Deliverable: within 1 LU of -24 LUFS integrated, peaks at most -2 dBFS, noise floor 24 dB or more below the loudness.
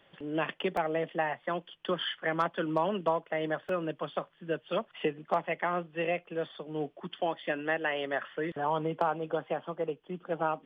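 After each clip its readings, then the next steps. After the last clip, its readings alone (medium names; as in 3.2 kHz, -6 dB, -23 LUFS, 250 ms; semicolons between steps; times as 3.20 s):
dropouts 2; longest dropout 2.5 ms; loudness -33.0 LUFS; peak level -16.0 dBFS; loudness target -24.0 LUFS
-> interpolate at 0.77/3.69 s, 2.5 ms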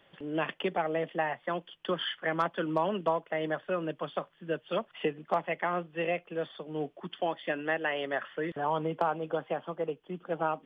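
dropouts 0; loudness -33.0 LUFS; peak level -16.0 dBFS; loudness target -24.0 LUFS
-> trim +9 dB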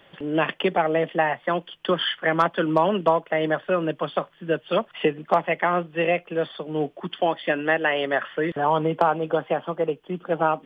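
loudness -24.0 LUFS; peak level -7.0 dBFS; noise floor -56 dBFS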